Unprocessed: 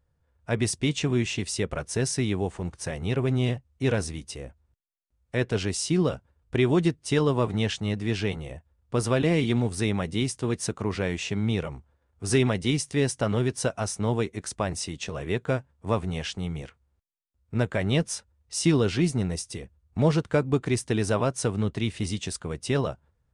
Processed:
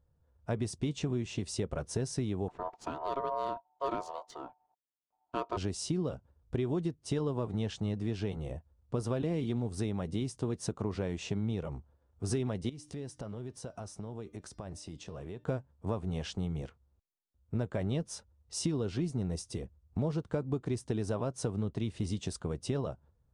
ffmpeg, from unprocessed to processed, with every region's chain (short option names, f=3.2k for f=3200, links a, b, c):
-filter_complex "[0:a]asettb=1/sr,asplit=3[a][b][c];[a]atrim=end=2.484[d];[b]atrim=start=2.48:end=5.57,asetpts=PTS-STARTPTS,afade=t=in:d=0.004:c=qsin,afade=t=out:st=3.086:d=0.004:c=qsin,highpass=71,adynamicsmooth=sensitivity=5:basefreq=3.6k,aeval=exprs='val(0)*sin(2*PI*820*n/s)':c=same[e];[c]atrim=start=5.566[f];[d][e]acrossfade=d=0.004:c1=hsin:c2=qsin[g];[g][f]acrossfade=d=0.004:c1=qsin:c2=hsin,asettb=1/sr,asplit=3[h][i][j];[h]atrim=end=12.694[k];[i]atrim=start=12.69:end=15.44,asetpts=PTS-STARTPTS,afade=t=in:d=0.004:c=qsin,afade=t=out:st=2.746:d=0.004:c=qsin,acompressor=threshold=-38dB:ratio=6:attack=3.2:release=140:knee=1:detection=peak,bandreject=f=300.4:t=h:w=4,bandreject=f=600.8:t=h:w=4,bandreject=f=901.2:t=h:w=4,bandreject=f=1.2016k:t=h:w=4,bandreject=f=1.502k:t=h:w=4,bandreject=f=1.8024k:t=h:w=4,bandreject=f=2.1028k:t=h:w=4,bandreject=f=2.4032k:t=h:w=4,bandreject=f=2.7036k:t=h:w=4,bandreject=f=3.004k:t=h:w=4,bandreject=f=3.3044k:t=h:w=4,bandreject=f=3.6048k:t=h:w=4,bandreject=f=3.9052k:t=h:w=4,bandreject=f=4.2056k:t=h:w=4,bandreject=f=4.506k:t=h:w=4,bandreject=f=4.8064k:t=h:w=4,bandreject=f=5.1068k:t=h:w=4,bandreject=f=5.4072k:t=h:w=4,bandreject=f=5.7076k:t=h:w=4[l];[j]atrim=start=15.436[m];[k][l]acrossfade=d=0.004:c1=hsin:c2=qsin[n];[n][m]acrossfade=d=0.004:c1=qsin:c2=hsin,lowpass=f=3.6k:p=1,equalizer=f=2.1k:t=o:w=1.4:g=-9.5,acompressor=threshold=-30dB:ratio=5"